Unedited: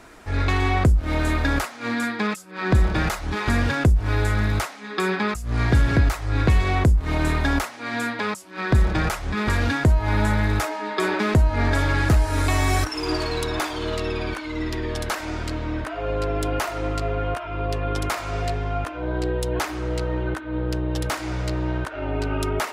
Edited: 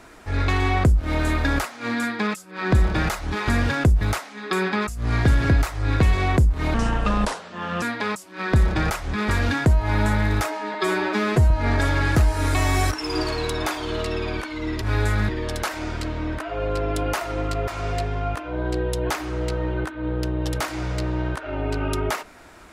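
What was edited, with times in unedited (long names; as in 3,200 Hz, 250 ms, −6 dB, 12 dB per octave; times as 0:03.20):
0:04.01–0:04.48: move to 0:14.75
0:07.21–0:08.01: play speed 74%
0:10.93–0:11.44: time-stretch 1.5×
0:17.14–0:18.17: remove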